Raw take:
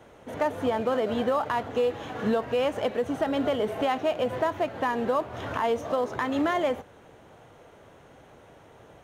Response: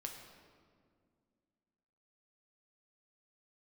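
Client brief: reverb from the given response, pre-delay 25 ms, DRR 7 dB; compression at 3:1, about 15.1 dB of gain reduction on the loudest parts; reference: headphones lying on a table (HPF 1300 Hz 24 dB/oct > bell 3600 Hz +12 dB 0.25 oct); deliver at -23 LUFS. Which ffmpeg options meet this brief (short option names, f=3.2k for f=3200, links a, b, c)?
-filter_complex "[0:a]acompressor=threshold=-43dB:ratio=3,asplit=2[a][b];[1:a]atrim=start_sample=2205,adelay=25[c];[b][c]afir=irnorm=-1:irlink=0,volume=-4.5dB[d];[a][d]amix=inputs=2:normalize=0,highpass=f=1.3k:w=0.5412,highpass=f=1.3k:w=1.3066,equalizer=f=3.6k:t=o:w=0.25:g=12,volume=27.5dB"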